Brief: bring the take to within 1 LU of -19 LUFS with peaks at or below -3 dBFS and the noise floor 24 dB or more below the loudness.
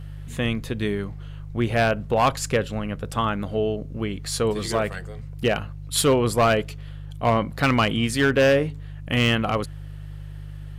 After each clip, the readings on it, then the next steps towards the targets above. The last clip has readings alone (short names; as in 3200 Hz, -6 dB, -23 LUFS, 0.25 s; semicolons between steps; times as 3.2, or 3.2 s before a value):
clipped 0.6%; flat tops at -12.5 dBFS; hum 50 Hz; harmonics up to 150 Hz; hum level -34 dBFS; loudness -23.0 LUFS; peak -12.5 dBFS; loudness target -19.0 LUFS
-> clip repair -12.5 dBFS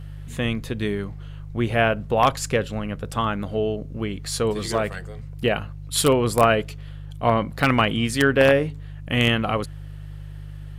clipped 0.0%; hum 50 Hz; harmonics up to 150 Hz; hum level -34 dBFS
-> de-hum 50 Hz, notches 3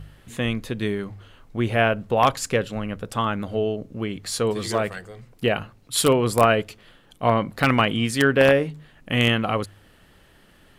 hum none; loudness -22.5 LUFS; peak -3.5 dBFS; loudness target -19.0 LUFS
-> gain +3.5 dB; limiter -3 dBFS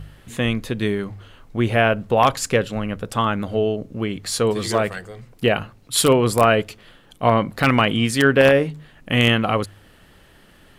loudness -19.5 LUFS; peak -3.0 dBFS; noise floor -51 dBFS